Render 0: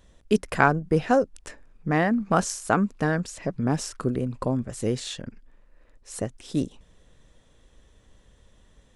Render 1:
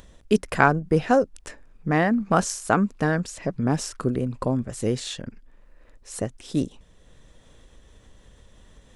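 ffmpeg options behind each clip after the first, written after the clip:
ffmpeg -i in.wav -af "acompressor=mode=upward:threshold=-45dB:ratio=2.5,volume=1.5dB" out.wav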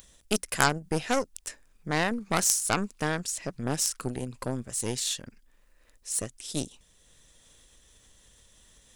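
ffmpeg -i in.wav -af "aeval=exprs='0.891*(cos(1*acos(clip(val(0)/0.891,-1,1)))-cos(1*PI/2))+0.1*(cos(8*acos(clip(val(0)/0.891,-1,1)))-cos(8*PI/2))':channel_layout=same,crystalizer=i=7:c=0,volume=-11dB" out.wav

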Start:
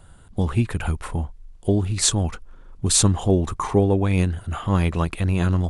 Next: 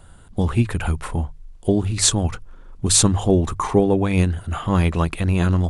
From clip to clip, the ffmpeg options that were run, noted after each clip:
ffmpeg -i in.wav -af "bandreject=frequency=50:width_type=h:width=6,bandreject=frequency=100:width_type=h:width=6,bandreject=frequency=150:width_type=h:width=6,volume=2.5dB" out.wav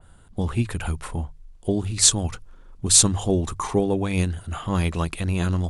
ffmpeg -i in.wav -af "adynamicequalizer=threshold=0.0158:dfrequency=3000:dqfactor=0.7:tfrequency=3000:tqfactor=0.7:attack=5:release=100:ratio=0.375:range=3.5:mode=boostabove:tftype=highshelf,volume=-5dB" out.wav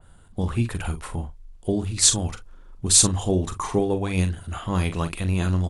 ffmpeg -i in.wav -filter_complex "[0:a]asplit=2[link_01][link_02];[link_02]adelay=43,volume=-10dB[link_03];[link_01][link_03]amix=inputs=2:normalize=0,volume=-1dB" out.wav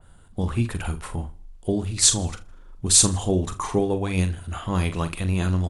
ffmpeg -i in.wav -af "aecho=1:1:80|160|240:0.0794|0.0357|0.0161" out.wav

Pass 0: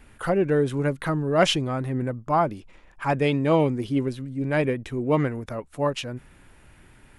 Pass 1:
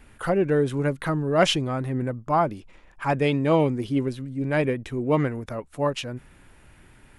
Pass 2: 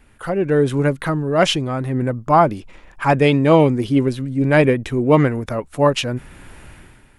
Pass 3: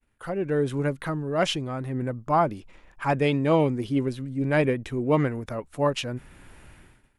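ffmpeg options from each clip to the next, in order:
ffmpeg -i in.wav -af anull out.wav
ffmpeg -i in.wav -af "dynaudnorm=framelen=160:gausssize=7:maxgain=15.5dB,volume=-1dB" out.wav
ffmpeg -i in.wav -af "agate=range=-33dB:threshold=-43dB:ratio=3:detection=peak,volume=-8.5dB" out.wav

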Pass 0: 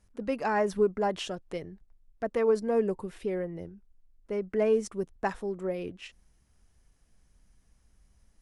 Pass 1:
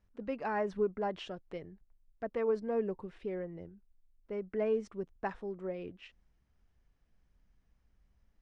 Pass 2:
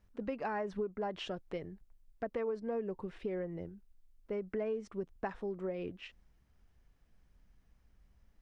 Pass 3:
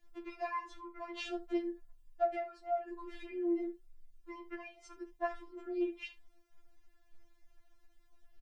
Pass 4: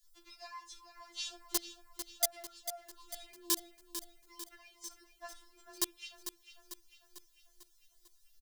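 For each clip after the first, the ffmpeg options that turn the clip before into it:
ffmpeg -i in.wav -af "lowpass=3500,volume=-6.5dB" out.wav
ffmpeg -i in.wav -af "acompressor=threshold=-38dB:ratio=5,volume=4dB" out.wav
ffmpeg -i in.wav -af "aecho=1:1:38|70:0.224|0.133,afftfilt=real='re*4*eq(mod(b,16),0)':imag='im*4*eq(mod(b,16),0)':win_size=2048:overlap=0.75,volume=5dB" out.wav
ffmpeg -i in.wav -filter_complex "[0:a]acrossover=split=240|720|1500[link_01][link_02][link_03][link_04];[link_02]acrusher=bits=4:mix=0:aa=0.000001[link_05];[link_01][link_05][link_03][link_04]amix=inputs=4:normalize=0,aexciter=amount=5.9:drive=8.3:freq=3500,aecho=1:1:447|894|1341|1788|2235|2682:0.316|0.168|0.0888|0.0471|0.025|0.0132,volume=-8dB" out.wav

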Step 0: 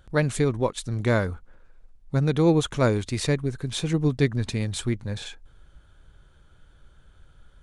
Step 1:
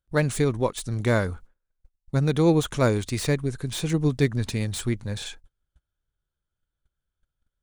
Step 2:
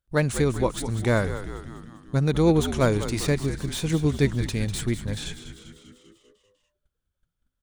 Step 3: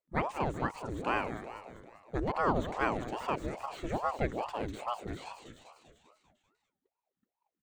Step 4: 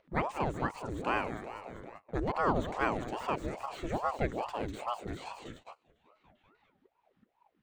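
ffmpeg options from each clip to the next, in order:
ffmpeg -i in.wav -filter_complex "[0:a]agate=range=-30dB:threshold=-43dB:ratio=16:detection=peak,highshelf=frequency=5800:gain=8.5,acrossover=split=2100[link_01][link_02];[link_02]asoftclip=type=hard:threshold=-30dB[link_03];[link_01][link_03]amix=inputs=2:normalize=0" out.wav
ffmpeg -i in.wav -filter_complex "[0:a]asplit=8[link_01][link_02][link_03][link_04][link_05][link_06][link_07][link_08];[link_02]adelay=197,afreqshift=-87,volume=-11dB[link_09];[link_03]adelay=394,afreqshift=-174,volume=-15.4dB[link_10];[link_04]adelay=591,afreqshift=-261,volume=-19.9dB[link_11];[link_05]adelay=788,afreqshift=-348,volume=-24.3dB[link_12];[link_06]adelay=985,afreqshift=-435,volume=-28.7dB[link_13];[link_07]adelay=1182,afreqshift=-522,volume=-33.2dB[link_14];[link_08]adelay=1379,afreqshift=-609,volume=-37.6dB[link_15];[link_01][link_09][link_10][link_11][link_12][link_13][link_14][link_15]amix=inputs=8:normalize=0" out.wav
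ffmpeg -i in.wav -filter_complex "[0:a]acrossover=split=2700[link_01][link_02];[link_02]acompressor=threshold=-43dB:ratio=4:attack=1:release=60[link_03];[link_01][link_03]amix=inputs=2:normalize=0,superequalizer=9b=1.58:11b=1.78:14b=0.447:16b=0.355,aeval=exprs='val(0)*sin(2*PI*570*n/s+570*0.7/2.4*sin(2*PI*2.4*n/s))':channel_layout=same,volume=-7.5dB" out.wav
ffmpeg -i in.wav -filter_complex "[0:a]agate=range=-26dB:threshold=-53dB:ratio=16:detection=peak,acrossover=split=3500[link_01][link_02];[link_01]acompressor=mode=upward:threshold=-36dB:ratio=2.5[link_03];[link_03][link_02]amix=inputs=2:normalize=0" out.wav

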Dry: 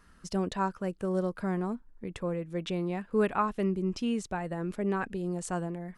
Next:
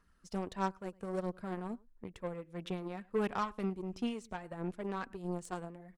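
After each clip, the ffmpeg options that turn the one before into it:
ffmpeg -i in.wav -filter_complex "[0:a]asplit=2[link_01][link_02];[link_02]adelay=105,volume=-20dB,highshelf=frequency=4000:gain=-2.36[link_03];[link_01][link_03]amix=inputs=2:normalize=0,aphaser=in_gain=1:out_gain=1:delay=4.4:decay=0.38:speed=1.5:type=sinusoidal,aeval=exprs='0.168*(cos(1*acos(clip(val(0)/0.168,-1,1)))-cos(1*PI/2))+0.0133*(cos(7*acos(clip(val(0)/0.168,-1,1)))-cos(7*PI/2))':channel_layout=same,volume=-6.5dB" out.wav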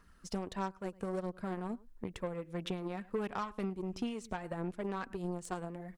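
ffmpeg -i in.wav -af "acompressor=threshold=-42dB:ratio=4,volume=7.5dB" out.wav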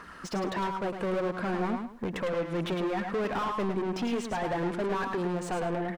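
ffmpeg -i in.wav -filter_complex "[0:a]asplit=2[link_01][link_02];[link_02]highpass=frequency=720:poles=1,volume=32dB,asoftclip=type=tanh:threshold=-22.5dB[link_03];[link_01][link_03]amix=inputs=2:normalize=0,lowpass=frequency=1500:poles=1,volume=-6dB,asplit=2[link_04][link_05];[link_05]aecho=0:1:106|212|318:0.473|0.0852|0.0153[link_06];[link_04][link_06]amix=inputs=2:normalize=0" out.wav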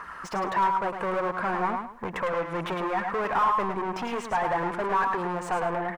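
ffmpeg -i in.wav -af "equalizer=frequency=250:width_type=o:width=1:gain=-6,equalizer=frequency=1000:width_type=o:width=1:gain=10,equalizer=frequency=2000:width_type=o:width=1:gain=4,equalizer=frequency=4000:width_type=o:width=1:gain=-4" out.wav

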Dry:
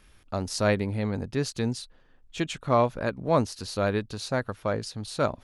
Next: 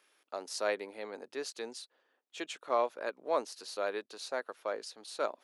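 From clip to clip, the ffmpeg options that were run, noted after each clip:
ffmpeg -i in.wav -af "highpass=frequency=370:width=0.5412,highpass=frequency=370:width=1.3066,volume=-7dB" out.wav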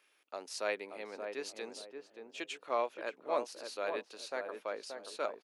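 ffmpeg -i in.wav -filter_complex "[0:a]equalizer=frequency=2500:width_type=o:width=0.59:gain=6,asplit=2[link_01][link_02];[link_02]adelay=578,lowpass=frequency=1000:poles=1,volume=-5dB,asplit=2[link_03][link_04];[link_04]adelay=578,lowpass=frequency=1000:poles=1,volume=0.32,asplit=2[link_05][link_06];[link_06]adelay=578,lowpass=frequency=1000:poles=1,volume=0.32,asplit=2[link_07][link_08];[link_08]adelay=578,lowpass=frequency=1000:poles=1,volume=0.32[link_09];[link_03][link_05][link_07][link_09]amix=inputs=4:normalize=0[link_10];[link_01][link_10]amix=inputs=2:normalize=0,volume=-3.5dB" out.wav

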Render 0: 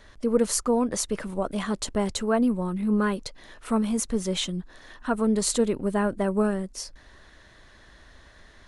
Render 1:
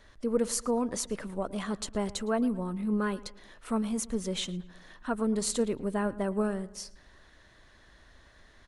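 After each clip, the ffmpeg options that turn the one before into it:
ffmpeg -i in.wav -filter_complex "[0:a]asplit=2[link_01][link_02];[link_02]adelay=112,lowpass=frequency=3000:poles=1,volume=-18.5dB,asplit=2[link_03][link_04];[link_04]adelay=112,lowpass=frequency=3000:poles=1,volume=0.47,asplit=2[link_05][link_06];[link_06]adelay=112,lowpass=frequency=3000:poles=1,volume=0.47,asplit=2[link_07][link_08];[link_08]adelay=112,lowpass=frequency=3000:poles=1,volume=0.47[link_09];[link_01][link_03][link_05][link_07][link_09]amix=inputs=5:normalize=0,volume=-5.5dB" out.wav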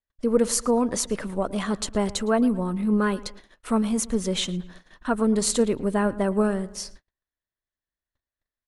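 ffmpeg -i in.wav -af "agate=range=-45dB:threshold=-49dB:ratio=16:detection=peak,volume=7dB" out.wav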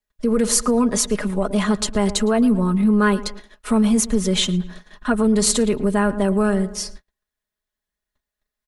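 ffmpeg -i in.wav -filter_complex "[0:a]aecho=1:1:4.8:0.67,acrossover=split=120|1300|2100[link_01][link_02][link_03][link_04];[link_02]alimiter=limit=-16.5dB:level=0:latency=1[link_05];[link_01][link_05][link_03][link_04]amix=inputs=4:normalize=0,volume=5dB" out.wav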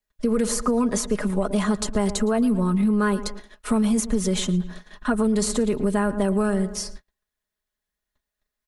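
ffmpeg -i in.wav -filter_complex "[0:a]acrossover=split=1900|4600[link_01][link_02][link_03];[link_01]acompressor=threshold=-18dB:ratio=4[link_04];[link_02]acompressor=threshold=-44dB:ratio=4[link_05];[link_03]acompressor=threshold=-28dB:ratio=4[link_06];[link_04][link_05][link_06]amix=inputs=3:normalize=0" out.wav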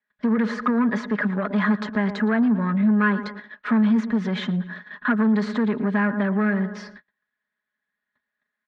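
ffmpeg -i in.wav -af "aeval=exprs='0.316*(cos(1*acos(clip(val(0)/0.316,-1,1)))-cos(1*PI/2))+0.0398*(cos(5*acos(clip(val(0)/0.316,-1,1)))-cos(5*PI/2))':channel_layout=same,highpass=220,equalizer=frequency=220:width_type=q:width=4:gain=5,equalizer=frequency=350:width_type=q:width=4:gain=-9,equalizer=frequency=500:width_type=q:width=4:gain=-6,equalizer=frequency=720:width_type=q:width=4:gain=-6,equalizer=frequency=1700:width_type=q:width=4:gain=10,equalizer=frequency=2800:width_type=q:width=4:gain=-7,lowpass=frequency=3200:width=0.5412,lowpass=frequency=3200:width=1.3066" out.wav

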